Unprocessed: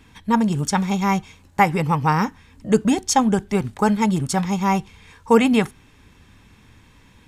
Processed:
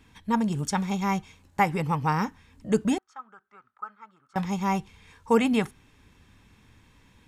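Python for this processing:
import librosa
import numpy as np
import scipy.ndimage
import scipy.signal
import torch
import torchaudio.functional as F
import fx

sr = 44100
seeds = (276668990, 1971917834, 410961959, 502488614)

y = fx.bandpass_q(x, sr, hz=1300.0, q=12.0, at=(2.98, 4.36))
y = y * librosa.db_to_amplitude(-6.5)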